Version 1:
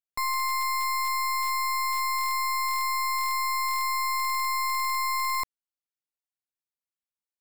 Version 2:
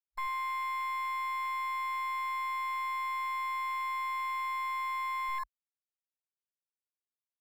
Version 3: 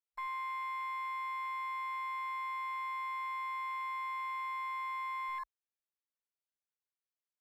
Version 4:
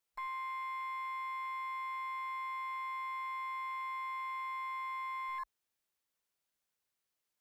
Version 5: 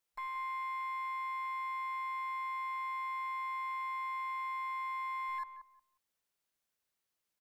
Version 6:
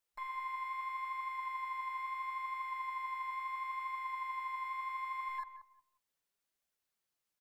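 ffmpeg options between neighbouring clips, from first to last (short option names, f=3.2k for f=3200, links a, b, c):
-af "afwtdn=0.0224,volume=-6dB"
-af "bass=f=250:g=-14,treble=f=4k:g=-8,volume=-4dB"
-af "alimiter=level_in=19dB:limit=-24dB:level=0:latency=1,volume=-19dB,volume=8.5dB"
-filter_complex "[0:a]asplit=2[a][b];[b]adelay=180,lowpass=f=1k:p=1,volume=-8dB,asplit=2[c][d];[d]adelay=180,lowpass=f=1k:p=1,volume=0.27,asplit=2[e][f];[f]adelay=180,lowpass=f=1k:p=1,volume=0.27[g];[a][c][e][g]amix=inputs=4:normalize=0"
-af "flanger=delay=1.2:depth=7.9:regen=62:speed=0.75:shape=triangular,volume=2.5dB"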